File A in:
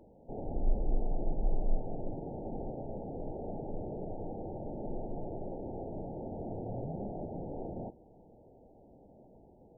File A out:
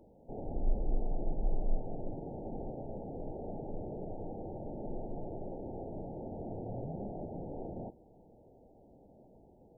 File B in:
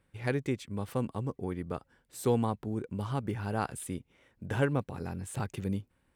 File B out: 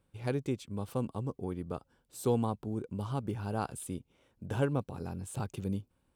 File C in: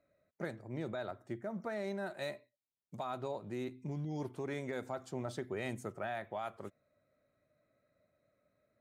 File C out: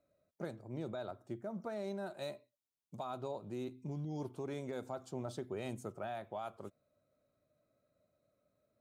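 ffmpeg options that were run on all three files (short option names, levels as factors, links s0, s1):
-af "equalizer=f=1900:t=o:w=0.57:g=-10.5,volume=0.841"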